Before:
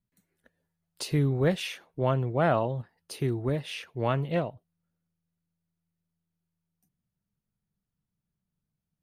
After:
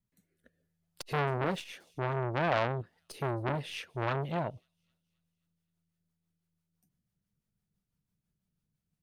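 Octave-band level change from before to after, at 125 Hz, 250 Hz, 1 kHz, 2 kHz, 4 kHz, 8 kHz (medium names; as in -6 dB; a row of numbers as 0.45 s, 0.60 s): -6.5 dB, -7.5 dB, -1.0 dB, +0.5 dB, -4.5 dB, -8.0 dB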